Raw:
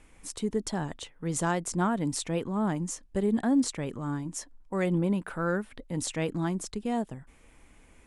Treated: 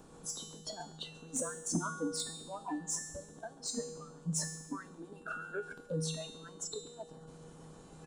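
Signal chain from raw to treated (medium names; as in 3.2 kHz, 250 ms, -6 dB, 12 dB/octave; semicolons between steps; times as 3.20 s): spectral levelling over time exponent 0.4; low-pass 8.7 kHz 12 dB/octave; compression 4:1, threshold -29 dBFS, peak gain reduction 9.5 dB; peaking EQ 2.1 kHz -14 dB 0.62 oct; in parallel at +0.5 dB: peak limiter -25 dBFS, peak gain reduction 9.5 dB; on the sum: bass shelf 370 Hz +4 dB; feedback delay 138 ms, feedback 51%, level -5.5 dB; harmonic-percussive split harmonic -17 dB; spectral noise reduction 23 dB; saturation -24.5 dBFS, distortion -17 dB; feedback comb 160 Hz, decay 0.93 s, harmonics odd, mix 90%; on a send at -21.5 dB: reverberation RT60 1.8 s, pre-delay 3 ms; on the sum: trim +17.5 dB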